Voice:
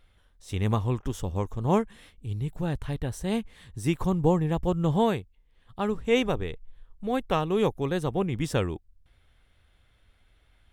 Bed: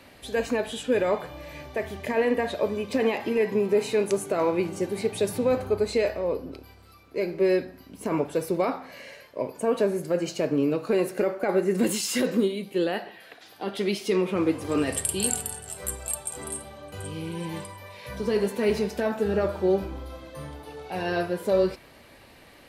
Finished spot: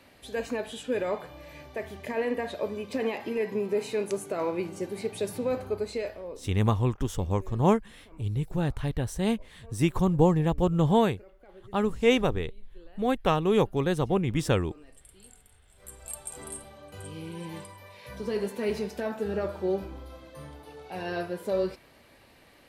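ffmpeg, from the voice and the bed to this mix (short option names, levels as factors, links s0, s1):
-filter_complex "[0:a]adelay=5950,volume=1.19[s0];[1:a]volume=7.5,afade=t=out:st=5.69:d=1:silence=0.0707946,afade=t=in:st=15.72:d=0.58:silence=0.0707946[s1];[s0][s1]amix=inputs=2:normalize=0"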